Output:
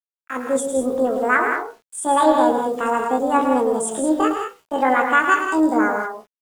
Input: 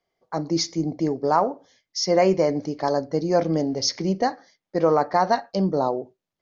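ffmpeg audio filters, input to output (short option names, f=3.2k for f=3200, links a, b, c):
-filter_complex "[0:a]equalizer=f=1k:t=o:w=0.94:g=5.5,bandreject=f=60:t=h:w=6,bandreject=f=120:t=h:w=6,bandreject=f=180:t=h:w=6,bandreject=f=240:t=h:w=6,bandreject=f=300:t=h:w=6,bandreject=f=360:t=h:w=6,bandreject=f=420:t=h:w=6,acrossover=split=340[a][b];[a]dynaudnorm=f=110:g=9:m=6.5dB[c];[b]flanger=delay=17:depth=5.7:speed=0.57[d];[c][d]amix=inputs=2:normalize=0,acrusher=bits=7:mix=0:aa=0.000001,asetrate=72056,aresample=44100,atempo=0.612027,aecho=1:1:107.9|166.2|198.3:0.398|0.398|0.316"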